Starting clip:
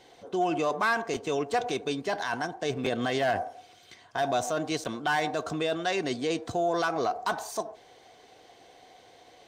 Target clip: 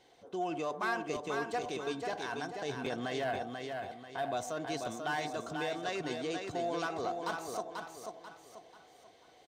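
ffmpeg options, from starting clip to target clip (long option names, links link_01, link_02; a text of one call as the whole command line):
ffmpeg -i in.wav -filter_complex "[0:a]asettb=1/sr,asplit=3[link_01][link_02][link_03];[link_01]atrim=end=3.244[link_04];[link_02]atrim=start=3.24:end=4.37,asetpts=PTS-STARTPTS,afade=type=in:duration=0.004:curve=qsin,afade=type=out:start_time=1.126:duration=0.004:curve=qsin,equalizer=frequency=5900:width_type=o:width=0.41:gain=-14.5[link_05];[link_03]atrim=start=4.366[link_06];[link_04][link_05]acrossfade=duration=0.004:curve1=hsin:curve2=qsin[link_07];[link_07][link_06]acrossfade=duration=0.004:curve1=qsin:curve2=hsin,aecho=1:1:489|978|1467|1956|2445:0.562|0.214|0.0812|0.0309|0.0117,volume=-8.5dB" out.wav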